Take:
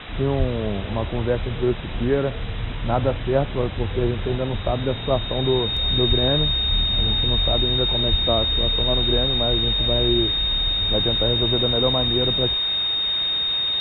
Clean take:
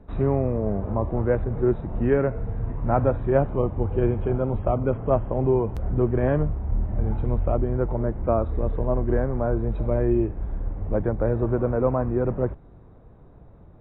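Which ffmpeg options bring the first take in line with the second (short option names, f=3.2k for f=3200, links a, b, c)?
-filter_complex "[0:a]bandreject=f=3.7k:w=30,asplit=3[a][b][c];[a]afade=t=out:st=0.38:d=0.02[d];[b]highpass=f=140:w=0.5412,highpass=f=140:w=1.3066,afade=t=in:st=0.38:d=0.02,afade=t=out:st=0.5:d=0.02[e];[c]afade=t=in:st=0.5:d=0.02[f];[d][e][f]amix=inputs=3:normalize=0,asplit=3[g][h][i];[g]afade=t=out:st=6.08:d=0.02[j];[h]highpass=f=140:w=0.5412,highpass=f=140:w=1.3066,afade=t=in:st=6.08:d=0.02,afade=t=out:st=6.2:d=0.02[k];[i]afade=t=in:st=6.2:d=0.02[l];[j][k][l]amix=inputs=3:normalize=0,asplit=3[m][n][o];[m]afade=t=out:st=8.1:d=0.02[p];[n]highpass=f=140:w=0.5412,highpass=f=140:w=1.3066,afade=t=in:st=8.1:d=0.02,afade=t=out:st=8.22:d=0.02[q];[o]afade=t=in:st=8.22:d=0.02[r];[p][q][r]amix=inputs=3:normalize=0,afwtdn=0.028"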